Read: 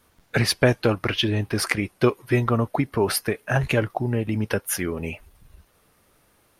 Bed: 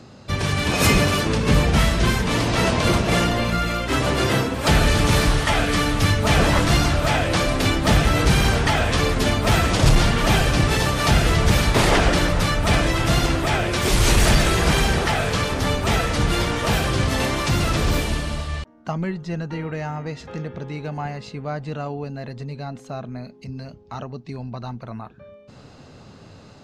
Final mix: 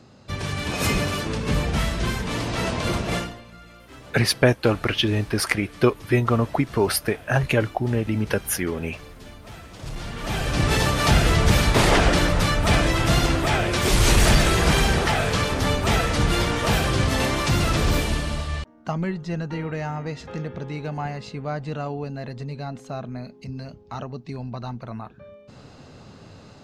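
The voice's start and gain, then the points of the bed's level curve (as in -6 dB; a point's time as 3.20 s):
3.80 s, +1.0 dB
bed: 3.16 s -6 dB
3.43 s -23.5 dB
9.70 s -23.5 dB
10.72 s -0.5 dB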